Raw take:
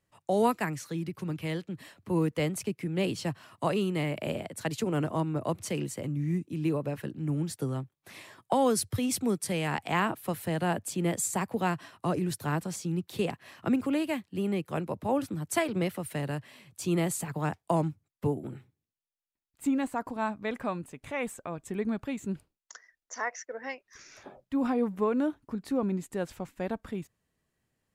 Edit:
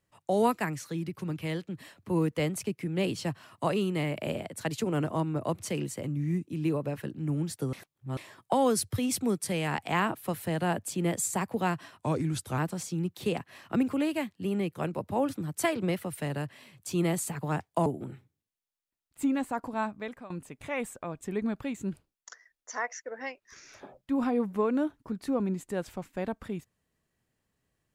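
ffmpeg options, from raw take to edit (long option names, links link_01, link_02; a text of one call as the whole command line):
ffmpeg -i in.wav -filter_complex "[0:a]asplit=7[link_01][link_02][link_03][link_04][link_05][link_06][link_07];[link_01]atrim=end=7.732[link_08];[link_02]atrim=start=7.728:end=8.172,asetpts=PTS-STARTPTS,areverse[link_09];[link_03]atrim=start=8.168:end=11.994[link_10];[link_04]atrim=start=11.99:end=12.51,asetpts=PTS-STARTPTS,asetrate=38808,aresample=44100,atrim=end_sample=26059,asetpts=PTS-STARTPTS[link_11];[link_05]atrim=start=12.506:end=17.792[link_12];[link_06]atrim=start=18.288:end=20.73,asetpts=PTS-STARTPTS,afade=type=out:start_time=1.972:duration=0.47:silence=0.11885[link_13];[link_07]atrim=start=20.73,asetpts=PTS-STARTPTS,afade=type=in:duration=0.004:curve=hsin:silence=0.11885[link_14];[link_08][link_09]acrossfade=duration=0.004:curve1=hsin:curve2=hsin[link_15];[link_15][link_10]acrossfade=duration=0.004:curve1=hsin:curve2=hsin[link_16];[link_16][link_11]acrossfade=duration=0.004:curve1=hsin:curve2=hsin[link_17];[link_17][link_12]acrossfade=duration=0.004:curve1=hsin:curve2=hsin[link_18];[link_13][link_14]concat=n=2:v=0:a=1[link_19];[link_18][link_19]acrossfade=duration=0.004:curve1=hsin:curve2=hsin" out.wav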